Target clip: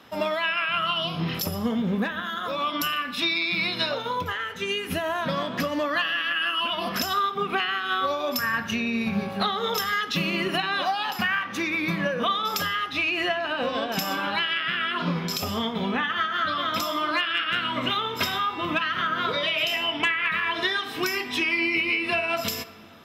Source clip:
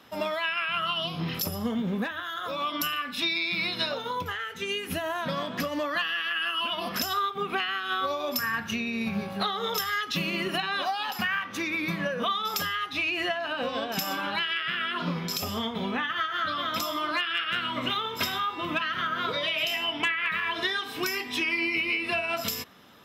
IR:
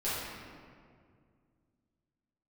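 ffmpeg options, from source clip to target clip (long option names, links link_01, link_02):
-filter_complex "[0:a]highshelf=frequency=6200:gain=-4.5,asplit=2[link_01][link_02];[1:a]atrim=start_sample=2205,adelay=30[link_03];[link_02][link_03]afir=irnorm=-1:irlink=0,volume=-23dB[link_04];[link_01][link_04]amix=inputs=2:normalize=0,volume=3.5dB"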